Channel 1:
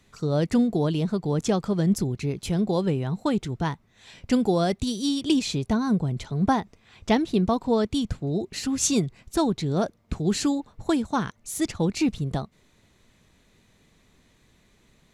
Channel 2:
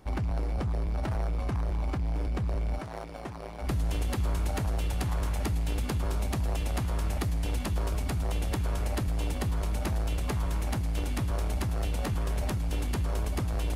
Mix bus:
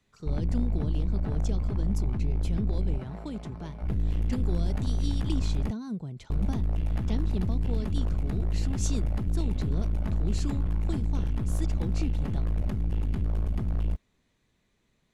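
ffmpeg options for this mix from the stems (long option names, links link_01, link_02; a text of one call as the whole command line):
ffmpeg -i stem1.wav -i stem2.wav -filter_complex "[0:a]highshelf=frequency=8400:gain=-4.5,acrossover=split=400|3000[link_01][link_02][link_03];[link_02]acompressor=threshold=-37dB:ratio=6[link_04];[link_01][link_04][link_03]amix=inputs=3:normalize=0,volume=-11dB[link_05];[1:a]bass=frequency=250:gain=12,treble=frequency=4000:gain=-11,aecho=1:1:4.7:0.42,aeval=exprs='(tanh(8.91*val(0)+0.75)-tanh(0.75))/8.91':channel_layout=same,adelay=200,volume=-4.5dB,asplit=3[link_06][link_07][link_08];[link_06]atrim=end=5.71,asetpts=PTS-STARTPTS,afade=type=out:start_time=5.706:duration=0.004:curve=hsin[link_09];[link_07]atrim=start=5.71:end=6.3,asetpts=PTS-STARTPTS,volume=0[link_10];[link_08]atrim=start=6.3,asetpts=PTS-STARTPTS,afade=type=in:duration=0.004:curve=hsin[link_11];[link_09][link_10][link_11]concat=n=3:v=0:a=1[link_12];[link_05][link_12]amix=inputs=2:normalize=0" out.wav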